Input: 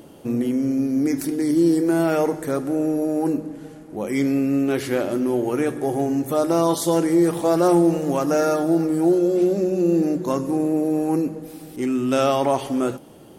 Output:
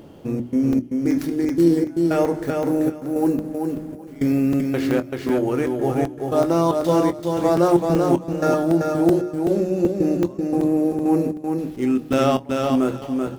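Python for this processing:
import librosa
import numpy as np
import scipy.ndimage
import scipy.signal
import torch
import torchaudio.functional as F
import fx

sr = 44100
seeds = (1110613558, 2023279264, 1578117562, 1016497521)

y = scipy.ndimage.median_filter(x, 5, mode='constant')
y = fx.high_shelf(y, sr, hz=11000.0, db=10.5, at=(2.45, 4.62))
y = fx.step_gate(y, sr, bpm=114, pattern='xxx.xx..', floor_db=-24.0, edge_ms=4.5)
y = fx.low_shelf(y, sr, hz=160.0, db=7.0)
y = fx.hum_notches(y, sr, base_hz=60, count=6)
y = fx.doubler(y, sr, ms=23.0, db=-13.0)
y = fx.echo_feedback(y, sr, ms=385, feedback_pct=18, wet_db=-4.0)
y = fx.buffer_crackle(y, sr, first_s=0.73, period_s=0.38, block=128, kind='zero')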